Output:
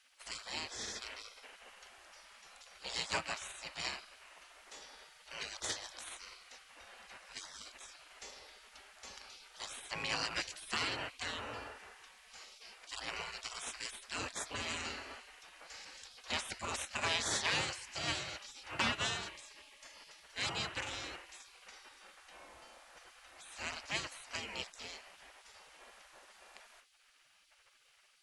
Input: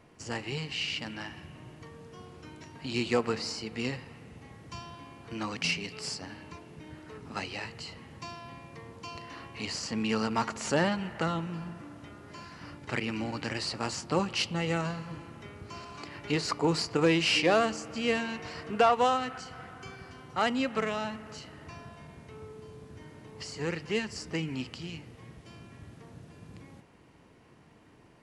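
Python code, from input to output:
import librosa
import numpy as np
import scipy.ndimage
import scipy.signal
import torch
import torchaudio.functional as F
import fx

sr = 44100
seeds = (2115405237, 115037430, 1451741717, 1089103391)

y = fx.spec_gate(x, sr, threshold_db=-20, keep='weak')
y = y * 10.0 ** (4.0 / 20.0)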